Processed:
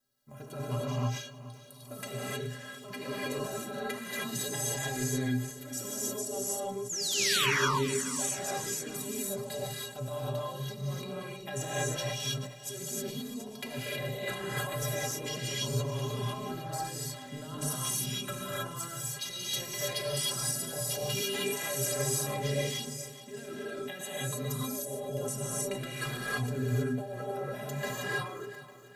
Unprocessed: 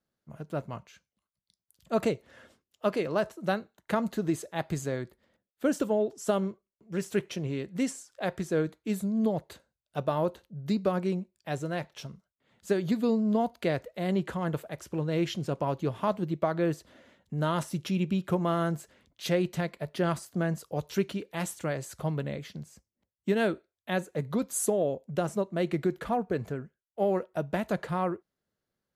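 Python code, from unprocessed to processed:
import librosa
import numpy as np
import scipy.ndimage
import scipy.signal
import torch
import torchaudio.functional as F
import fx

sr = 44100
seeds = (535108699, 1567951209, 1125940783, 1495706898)

p1 = fx.high_shelf(x, sr, hz=3300.0, db=11.0)
p2 = fx.hum_notches(p1, sr, base_hz=50, count=4)
p3 = fx.over_compress(p2, sr, threshold_db=-35.0, ratio=-1.0)
p4 = fx.stiff_resonator(p3, sr, f0_hz=120.0, decay_s=0.3, stiffness=0.03)
p5 = fx.spec_paint(p4, sr, seeds[0], shape='fall', start_s=6.89, length_s=0.62, low_hz=870.0, high_hz=7500.0, level_db=-40.0)
p6 = p5 + fx.echo_feedback(p5, sr, ms=426, feedback_pct=55, wet_db=-15.5, dry=0)
p7 = fx.rev_gated(p6, sr, seeds[1], gate_ms=340, shape='rising', drr_db=-6.5)
p8 = fx.sustainer(p7, sr, db_per_s=97.0)
y = F.gain(torch.from_numpy(p8), 4.5).numpy()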